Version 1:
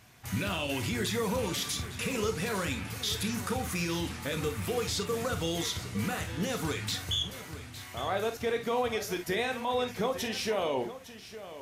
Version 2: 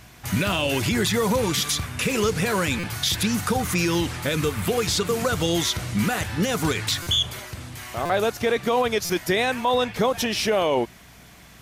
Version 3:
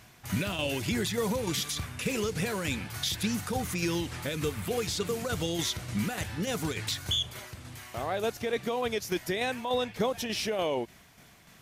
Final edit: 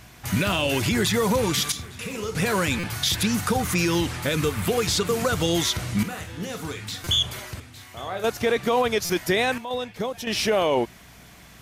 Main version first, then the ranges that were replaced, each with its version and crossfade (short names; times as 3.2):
2
1.72–2.35 from 1
6.03–7.04 from 1
7.6–8.24 from 1
9.58–10.27 from 3